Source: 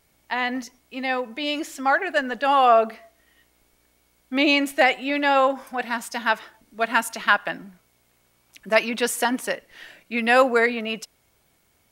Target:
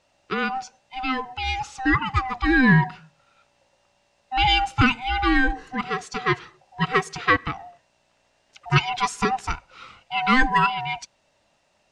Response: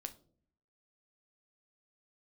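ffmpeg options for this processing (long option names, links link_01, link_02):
-af "afftfilt=real='real(if(lt(b,1008),b+24*(1-2*mod(floor(b/24),2)),b),0)':imag='imag(if(lt(b,1008),b+24*(1-2*mod(floor(b/24),2)),b),0)':win_size=2048:overlap=0.75,aeval=exprs='0.708*(cos(1*acos(clip(val(0)/0.708,-1,1)))-cos(1*PI/2))+0.0501*(cos(2*acos(clip(val(0)/0.708,-1,1)))-cos(2*PI/2))':channel_layout=same,lowpass=frequency=6900:width=0.5412,lowpass=frequency=6900:width=1.3066"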